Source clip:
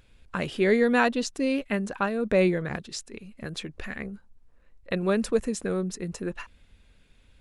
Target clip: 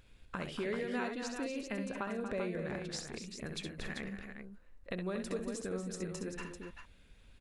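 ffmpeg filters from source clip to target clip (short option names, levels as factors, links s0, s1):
-filter_complex "[0:a]acompressor=threshold=0.0158:ratio=3,asplit=2[s0][s1];[s1]aecho=0:1:66|78|236|279|390:0.422|0.112|0.355|0.178|0.447[s2];[s0][s2]amix=inputs=2:normalize=0,volume=0.668"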